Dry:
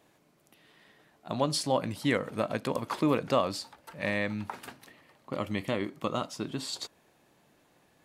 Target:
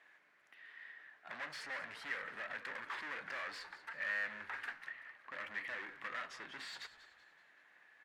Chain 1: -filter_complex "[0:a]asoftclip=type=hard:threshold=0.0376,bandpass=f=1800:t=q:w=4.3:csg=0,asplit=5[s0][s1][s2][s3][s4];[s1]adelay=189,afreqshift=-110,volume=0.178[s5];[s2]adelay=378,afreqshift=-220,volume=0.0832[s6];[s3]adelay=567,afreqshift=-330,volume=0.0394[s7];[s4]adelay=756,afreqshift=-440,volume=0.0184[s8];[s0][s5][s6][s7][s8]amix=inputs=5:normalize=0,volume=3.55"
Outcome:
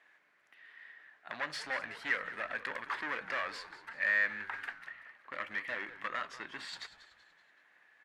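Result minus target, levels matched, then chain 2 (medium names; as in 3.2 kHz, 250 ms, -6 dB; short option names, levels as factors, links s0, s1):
hard clipper: distortion -5 dB
-filter_complex "[0:a]asoftclip=type=hard:threshold=0.0112,bandpass=f=1800:t=q:w=4.3:csg=0,asplit=5[s0][s1][s2][s3][s4];[s1]adelay=189,afreqshift=-110,volume=0.178[s5];[s2]adelay=378,afreqshift=-220,volume=0.0832[s6];[s3]adelay=567,afreqshift=-330,volume=0.0394[s7];[s4]adelay=756,afreqshift=-440,volume=0.0184[s8];[s0][s5][s6][s7][s8]amix=inputs=5:normalize=0,volume=3.55"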